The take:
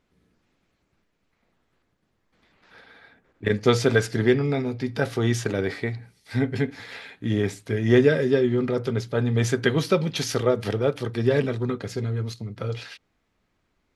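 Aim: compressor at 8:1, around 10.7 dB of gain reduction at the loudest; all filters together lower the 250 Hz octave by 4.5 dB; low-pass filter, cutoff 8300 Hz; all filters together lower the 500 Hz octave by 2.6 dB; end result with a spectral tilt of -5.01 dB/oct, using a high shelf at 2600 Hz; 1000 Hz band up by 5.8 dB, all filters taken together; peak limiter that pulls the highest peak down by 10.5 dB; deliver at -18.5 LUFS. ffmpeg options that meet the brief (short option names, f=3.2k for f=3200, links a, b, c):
-af "lowpass=8.3k,equalizer=f=250:t=o:g=-5.5,equalizer=f=500:t=o:g=-3,equalizer=f=1k:t=o:g=8.5,highshelf=f=2.6k:g=3.5,acompressor=threshold=-26dB:ratio=8,volume=15.5dB,alimiter=limit=-6.5dB:level=0:latency=1"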